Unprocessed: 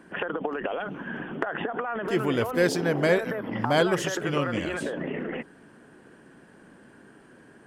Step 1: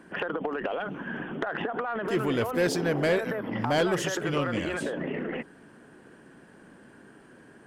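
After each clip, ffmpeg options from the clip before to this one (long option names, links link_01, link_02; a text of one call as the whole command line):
ffmpeg -i in.wav -af "asoftclip=type=tanh:threshold=-17.5dB" out.wav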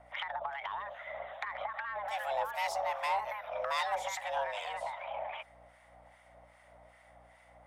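ffmpeg -i in.wav -filter_complex "[0:a]afreqshift=400,aeval=exprs='val(0)+0.00141*(sin(2*PI*60*n/s)+sin(2*PI*2*60*n/s)/2+sin(2*PI*3*60*n/s)/3+sin(2*PI*4*60*n/s)/4+sin(2*PI*5*60*n/s)/5)':channel_layout=same,acrossover=split=1200[link_01][link_02];[link_01]aeval=exprs='val(0)*(1-0.7/2+0.7/2*cos(2*PI*2.5*n/s))':channel_layout=same[link_03];[link_02]aeval=exprs='val(0)*(1-0.7/2-0.7/2*cos(2*PI*2.5*n/s))':channel_layout=same[link_04];[link_03][link_04]amix=inputs=2:normalize=0,volume=-4.5dB" out.wav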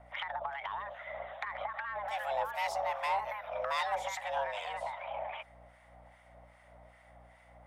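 ffmpeg -i in.wav -af "bass=frequency=250:gain=5,treble=frequency=4000:gain=-3" out.wav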